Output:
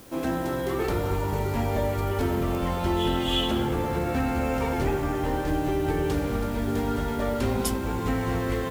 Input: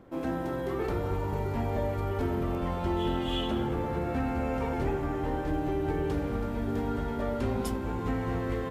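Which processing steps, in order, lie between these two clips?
high-shelf EQ 3,000 Hz +9.5 dB
in parallel at −5 dB: bit-depth reduction 8 bits, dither triangular

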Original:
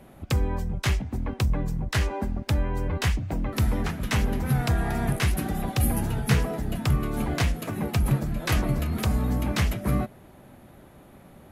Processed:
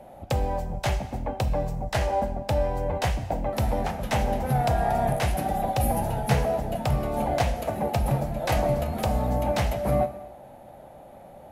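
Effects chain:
flat-topped bell 670 Hz +13 dB 1 octave
reverb whose tail is shaped and stops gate 360 ms falling, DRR 9.5 dB
level −3 dB

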